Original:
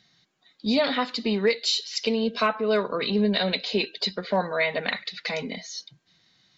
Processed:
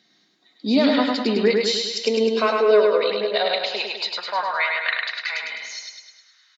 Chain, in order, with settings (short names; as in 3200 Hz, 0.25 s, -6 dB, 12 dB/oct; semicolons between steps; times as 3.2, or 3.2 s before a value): high-pass sweep 280 Hz -> 1400 Hz, 1.83–4.93; feedback echo 0.103 s, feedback 56%, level -3 dB